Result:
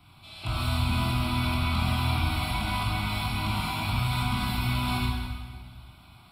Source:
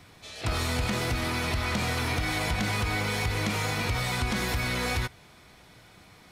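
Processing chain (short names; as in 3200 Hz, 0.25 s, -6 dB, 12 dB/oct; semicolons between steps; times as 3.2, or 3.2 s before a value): fixed phaser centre 1800 Hz, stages 6; reverb RT60 1.6 s, pre-delay 15 ms, DRR -4.5 dB; gain -3.5 dB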